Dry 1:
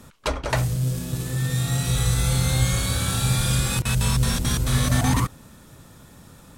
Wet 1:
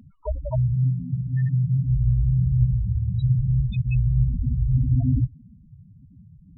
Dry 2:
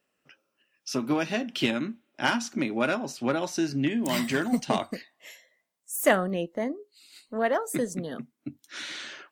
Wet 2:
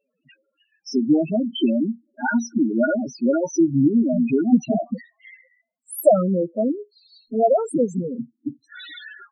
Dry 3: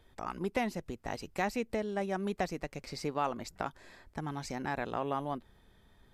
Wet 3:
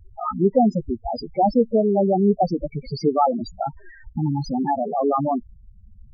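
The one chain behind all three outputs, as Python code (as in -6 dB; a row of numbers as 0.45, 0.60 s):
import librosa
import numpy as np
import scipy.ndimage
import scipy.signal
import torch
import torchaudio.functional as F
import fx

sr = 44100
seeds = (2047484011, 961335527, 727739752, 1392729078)

y = fx.spec_topn(x, sr, count=4)
y = y * 10.0 ** (-22 / 20.0) / np.sqrt(np.mean(np.square(y)))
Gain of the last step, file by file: +3.0, +10.0, +18.5 dB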